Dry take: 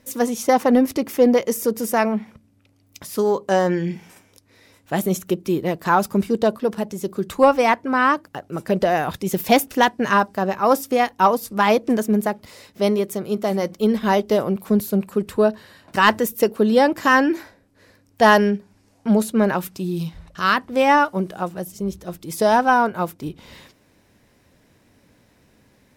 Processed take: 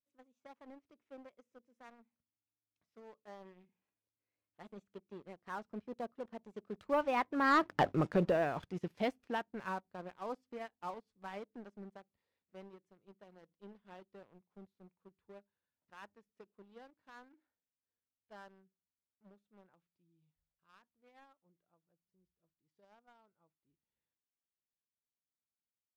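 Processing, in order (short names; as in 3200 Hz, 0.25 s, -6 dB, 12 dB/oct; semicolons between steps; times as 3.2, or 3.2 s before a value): Doppler pass-by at 7.84, 23 m/s, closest 1.2 m; LPF 3300 Hz 12 dB/oct; sample leveller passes 2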